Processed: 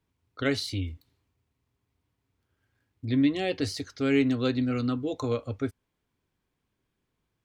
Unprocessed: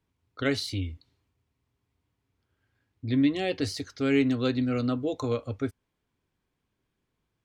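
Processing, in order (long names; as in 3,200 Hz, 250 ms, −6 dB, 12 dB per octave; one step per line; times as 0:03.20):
0:00.87–0:03.05: gap after every zero crossing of 0.068 ms
0:04.71–0:05.11: parametric band 600 Hz −9 dB 0.45 octaves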